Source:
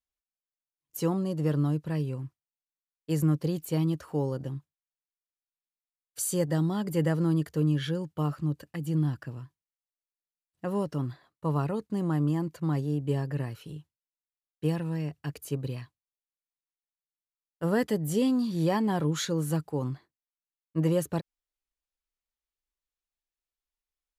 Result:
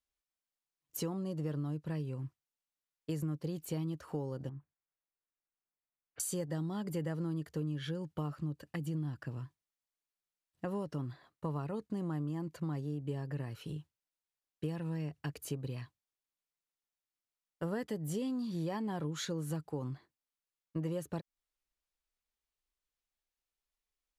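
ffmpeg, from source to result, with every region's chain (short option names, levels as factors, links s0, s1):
-filter_complex "[0:a]asettb=1/sr,asplit=3[s0][s1][s2];[s0]atrim=end=4.494[s3];[s1]atrim=start=4.49:end=6.2,asetpts=PTS-STARTPTS,afade=t=in:d=0.004:c=qsin,afade=t=out:st=1.706:d=0.004:c=qsin,lowpass=f=2200:w=0.5412,lowpass=f=2200:w=1.3066,acompressor=threshold=0.01:ratio=6:attack=3.2:release=140:knee=1:detection=peak[s4];[s2]atrim=start=6.196[s5];[s3][s4]acrossfade=d=0.004:c1=hsin:c2=qsin[s6];[s6][s5]acrossfade=d=0.004:c1=qsin:c2=hsin,highshelf=f=11000:g=-6,acompressor=threshold=0.0141:ratio=4,volume=1.12"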